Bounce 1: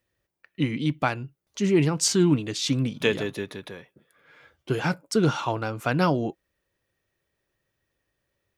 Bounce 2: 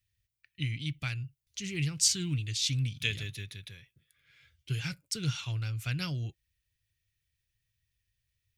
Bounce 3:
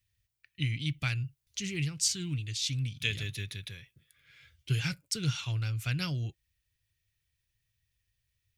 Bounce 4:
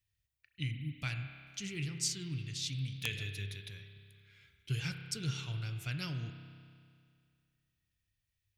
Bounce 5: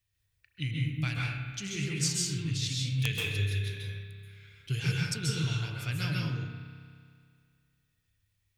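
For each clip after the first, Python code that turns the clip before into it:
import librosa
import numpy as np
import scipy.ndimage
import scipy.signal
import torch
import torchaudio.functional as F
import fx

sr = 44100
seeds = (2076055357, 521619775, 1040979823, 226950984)

y1 = fx.curve_eq(x, sr, hz=(110.0, 220.0, 900.0, 2300.0, 4200.0), db=(0, -22, -30, -6, -4))
y1 = y1 * 10.0 ** (2.5 / 20.0)
y2 = fx.rider(y1, sr, range_db=4, speed_s=0.5)
y3 = fx.spec_erase(y2, sr, start_s=0.71, length_s=0.26, low_hz=380.0, high_hz=10000.0)
y3 = fx.rev_spring(y3, sr, rt60_s=2.2, pass_ms=(30,), chirp_ms=20, drr_db=6.0)
y3 = (np.mod(10.0 ** (14.0 / 20.0) * y3 + 1.0, 2.0) - 1.0) / 10.0 ** (14.0 / 20.0)
y3 = y3 * 10.0 ** (-6.0 / 20.0)
y4 = fx.rev_plate(y3, sr, seeds[0], rt60_s=0.68, hf_ratio=0.55, predelay_ms=120, drr_db=-2.5)
y4 = y4 * 10.0 ** (3.0 / 20.0)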